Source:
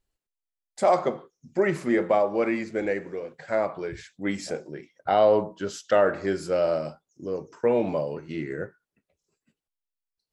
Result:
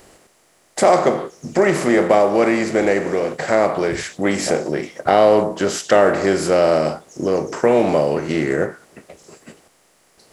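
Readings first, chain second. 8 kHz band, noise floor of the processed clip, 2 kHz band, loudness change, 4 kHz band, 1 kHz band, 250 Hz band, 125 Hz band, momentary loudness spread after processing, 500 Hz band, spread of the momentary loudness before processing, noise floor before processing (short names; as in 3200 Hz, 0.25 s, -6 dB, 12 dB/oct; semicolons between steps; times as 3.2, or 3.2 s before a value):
+15.5 dB, -57 dBFS, +10.0 dB, +8.5 dB, +12.5 dB, +8.5 dB, +9.5 dB, +10.0 dB, 8 LU, +8.5 dB, 14 LU, under -85 dBFS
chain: per-bin compression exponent 0.6; high shelf 7600 Hz +11 dB; in parallel at -1 dB: compressor, threshold -28 dBFS, peak gain reduction 14.5 dB; on the sum: gain +3 dB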